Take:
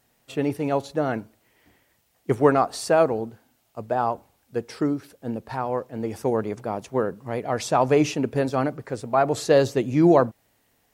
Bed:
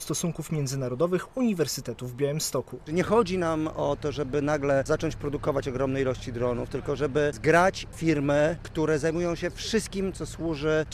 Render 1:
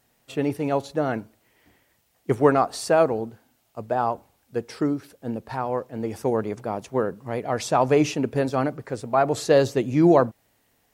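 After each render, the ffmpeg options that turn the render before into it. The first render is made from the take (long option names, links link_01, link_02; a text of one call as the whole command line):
ffmpeg -i in.wav -af anull out.wav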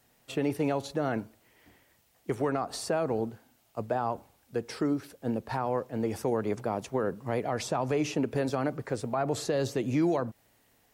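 ffmpeg -i in.wav -filter_complex "[0:a]acrossover=split=280|1400[link_01][link_02][link_03];[link_01]acompressor=threshold=-30dB:ratio=4[link_04];[link_02]acompressor=threshold=-24dB:ratio=4[link_05];[link_03]acompressor=threshold=-36dB:ratio=4[link_06];[link_04][link_05][link_06]amix=inputs=3:normalize=0,alimiter=limit=-19dB:level=0:latency=1:release=92" out.wav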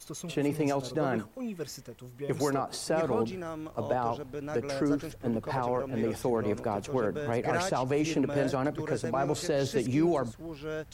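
ffmpeg -i in.wav -i bed.wav -filter_complex "[1:a]volume=-11.5dB[link_01];[0:a][link_01]amix=inputs=2:normalize=0" out.wav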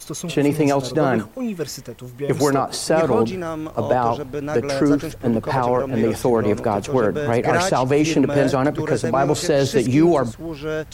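ffmpeg -i in.wav -af "volume=11dB" out.wav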